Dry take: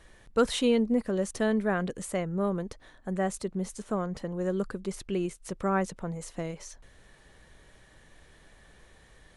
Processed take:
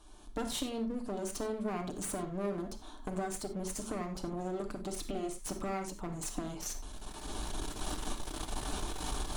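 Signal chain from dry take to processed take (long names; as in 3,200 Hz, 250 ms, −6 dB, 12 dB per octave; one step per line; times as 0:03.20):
camcorder AGC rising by 18 dB per second
phaser with its sweep stopped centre 510 Hz, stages 6
downward compressor, threshold −30 dBFS, peak gain reduction 7 dB
asymmetric clip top −43.5 dBFS
on a send: convolution reverb, pre-delay 7 ms, DRR 4 dB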